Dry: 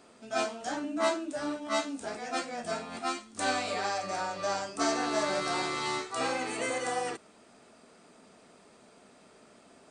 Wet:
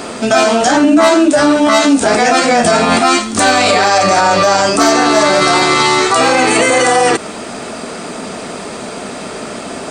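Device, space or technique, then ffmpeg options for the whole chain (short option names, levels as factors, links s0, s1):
loud club master: -af "acompressor=threshold=0.0141:ratio=1.5,asoftclip=type=hard:threshold=0.0562,alimiter=level_in=47.3:limit=0.891:release=50:level=0:latency=1,volume=0.891"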